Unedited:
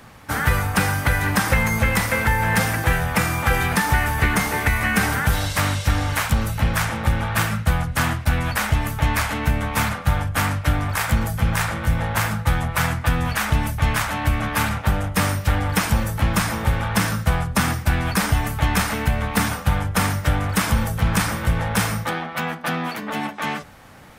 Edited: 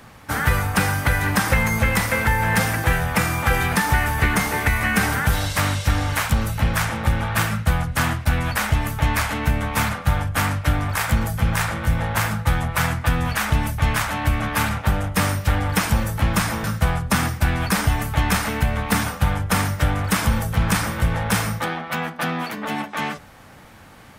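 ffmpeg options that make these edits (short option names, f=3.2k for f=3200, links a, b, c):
-filter_complex "[0:a]asplit=2[a][b];[a]atrim=end=16.642[c];[b]atrim=start=17.088[d];[c][d]acrossfade=d=0.004:c1=hsin:c2=hsin"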